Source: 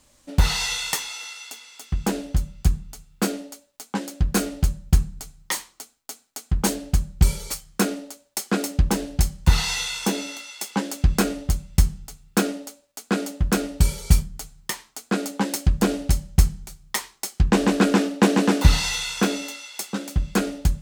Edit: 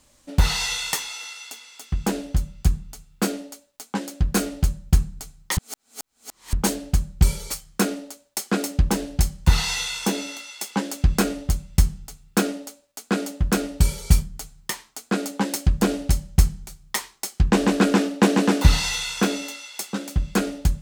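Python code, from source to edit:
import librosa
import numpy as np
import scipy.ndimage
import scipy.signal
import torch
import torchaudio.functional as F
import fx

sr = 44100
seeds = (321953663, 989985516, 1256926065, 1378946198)

y = fx.edit(x, sr, fx.reverse_span(start_s=5.57, length_s=0.96), tone=tone)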